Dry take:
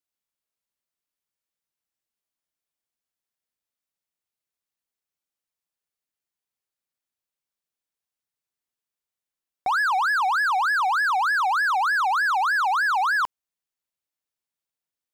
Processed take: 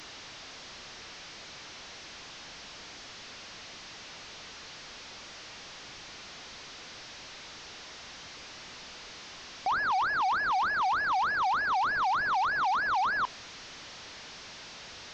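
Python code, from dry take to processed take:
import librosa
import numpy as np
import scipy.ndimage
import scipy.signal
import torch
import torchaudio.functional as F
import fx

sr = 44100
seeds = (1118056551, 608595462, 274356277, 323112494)

y = fx.delta_mod(x, sr, bps=32000, step_db=-34.0)
y = fx.sample_gate(y, sr, floor_db=-54.5, at=(9.71, 11.35))
y = y * 10.0 ** (-5.0 / 20.0)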